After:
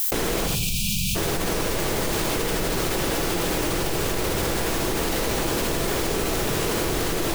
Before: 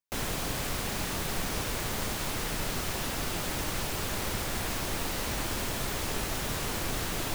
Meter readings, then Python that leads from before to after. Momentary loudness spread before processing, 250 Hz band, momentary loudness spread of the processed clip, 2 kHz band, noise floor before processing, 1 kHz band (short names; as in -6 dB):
0 LU, +10.0 dB, 1 LU, +6.5 dB, -34 dBFS, +7.0 dB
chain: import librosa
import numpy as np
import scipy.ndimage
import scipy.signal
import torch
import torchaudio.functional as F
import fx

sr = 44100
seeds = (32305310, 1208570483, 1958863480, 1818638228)

p1 = fx.spec_erase(x, sr, start_s=0.47, length_s=0.68, low_hz=230.0, high_hz=2300.0)
p2 = fx.peak_eq(p1, sr, hz=410.0, db=9.0, octaves=0.92)
p3 = fx.dmg_noise_colour(p2, sr, seeds[0], colour='violet', level_db=-51.0)
p4 = p3 + fx.echo_single(p3, sr, ms=82, db=-6.5, dry=0)
p5 = fx.room_shoebox(p4, sr, seeds[1], volume_m3=3300.0, walls='furnished', distance_m=0.69)
y = fx.env_flatten(p5, sr, amount_pct=100)